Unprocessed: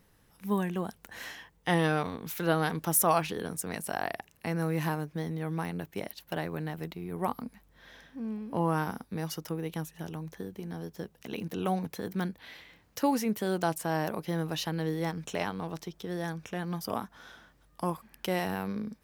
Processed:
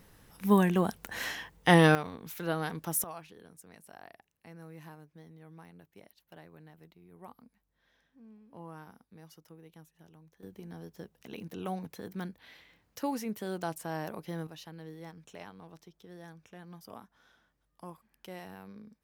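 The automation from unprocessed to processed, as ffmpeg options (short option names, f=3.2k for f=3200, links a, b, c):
-af "asetnsamples=n=441:p=0,asendcmd='1.95 volume volume -5.5dB;3.04 volume volume -18.5dB;10.43 volume volume -6.5dB;14.47 volume volume -14.5dB',volume=6dB"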